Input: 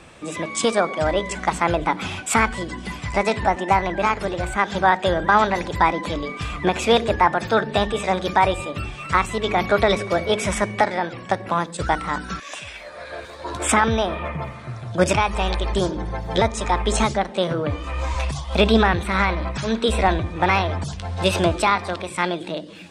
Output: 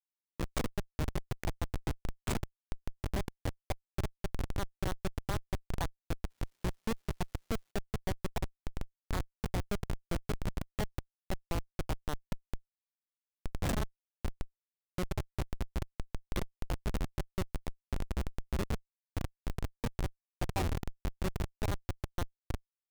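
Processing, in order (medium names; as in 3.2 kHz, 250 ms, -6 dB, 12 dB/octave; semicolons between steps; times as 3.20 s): compression 16:1, threshold -24 dBFS, peak gain reduction 15 dB; 20.55–21.17 s: small resonant body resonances 370/770 Hz, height 14 dB -> 9 dB, ringing for 45 ms; Schmitt trigger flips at -20.5 dBFS; 6.29–7.70 s: crackle 550 per s -62 dBFS; trim -1 dB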